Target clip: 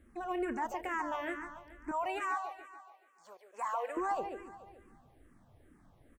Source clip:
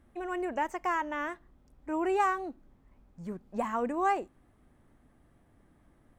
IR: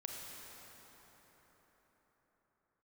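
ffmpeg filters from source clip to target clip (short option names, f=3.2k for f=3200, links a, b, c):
-filter_complex "[0:a]asettb=1/sr,asplit=3[a][b][c];[a]atrim=end=1.914[d];[b]atrim=start=1.91:end=3.97,asetpts=PTS-STARTPTS,afade=t=in:d=0.004:c=qsin,afade=t=out:st=2.056:d=0.004:c=qsin,highpass=f=600:w=0.5412,highpass=f=600:w=1.3066[e];[c]atrim=start=3.966[f];[d][e]acrossfade=d=0.004:c1=hsin:c2=qsin[g];[g][f]acrossfade=d=0.004:c1=qsin:c2=hsin,alimiter=level_in=4dB:limit=-24dB:level=0:latency=1:release=55,volume=-4dB,aecho=1:1:143|286|429|572|715|858|1001:0.376|0.207|0.114|0.0625|0.0344|0.0189|0.0104,asplit=2[h][i];[i]afreqshift=-2.3[j];[h][j]amix=inputs=2:normalize=1,volume=3dB"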